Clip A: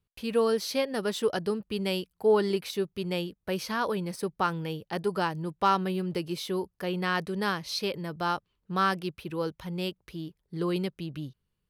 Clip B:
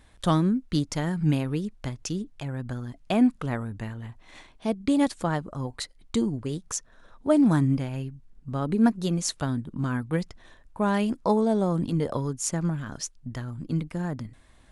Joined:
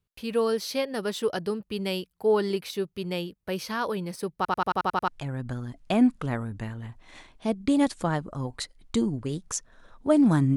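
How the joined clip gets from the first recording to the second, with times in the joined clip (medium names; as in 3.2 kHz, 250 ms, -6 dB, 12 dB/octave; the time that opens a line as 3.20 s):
clip A
4.36 s: stutter in place 0.09 s, 8 plays
5.08 s: go over to clip B from 2.28 s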